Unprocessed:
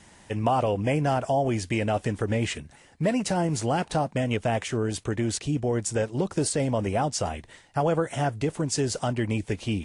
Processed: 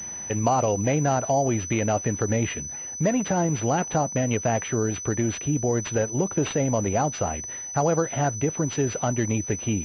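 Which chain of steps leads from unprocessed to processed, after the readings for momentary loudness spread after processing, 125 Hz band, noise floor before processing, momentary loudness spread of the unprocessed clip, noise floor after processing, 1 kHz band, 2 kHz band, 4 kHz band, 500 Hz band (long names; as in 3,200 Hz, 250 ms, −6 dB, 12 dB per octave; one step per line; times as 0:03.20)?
4 LU, +2.0 dB, −54 dBFS, 4 LU, −36 dBFS, +1.5 dB, +1.0 dB, −3.5 dB, +2.0 dB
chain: in parallel at +3 dB: downward compressor, threshold −39 dBFS, peak gain reduction 18 dB
on the sum: high-pass filter 58 Hz
switching amplifier with a slow clock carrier 6,000 Hz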